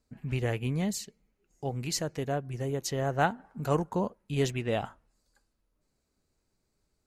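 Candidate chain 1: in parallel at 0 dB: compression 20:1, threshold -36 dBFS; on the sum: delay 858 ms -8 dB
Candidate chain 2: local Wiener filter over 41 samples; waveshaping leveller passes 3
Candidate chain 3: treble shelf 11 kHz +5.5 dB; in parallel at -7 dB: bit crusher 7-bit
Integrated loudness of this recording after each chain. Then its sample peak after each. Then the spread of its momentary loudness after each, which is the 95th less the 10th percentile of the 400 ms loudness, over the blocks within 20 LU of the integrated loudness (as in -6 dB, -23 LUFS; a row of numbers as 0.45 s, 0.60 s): -29.5 LUFS, -23.5 LUFS, -28.5 LUFS; -11.0 dBFS, -12.5 dBFS, -9.0 dBFS; 10 LU, 5 LU, 8 LU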